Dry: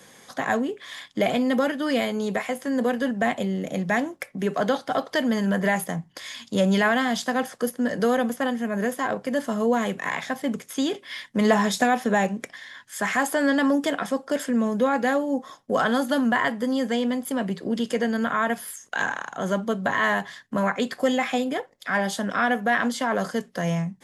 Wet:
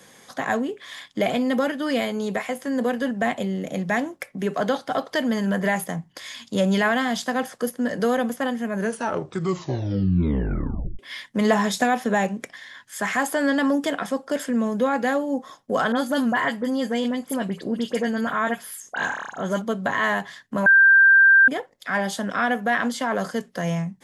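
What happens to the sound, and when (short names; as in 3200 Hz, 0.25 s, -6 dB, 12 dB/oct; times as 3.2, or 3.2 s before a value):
8.73 tape stop 2.26 s
15.92–19.62 dispersion highs, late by 47 ms, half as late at 2400 Hz
20.66–21.48 bleep 1580 Hz -10 dBFS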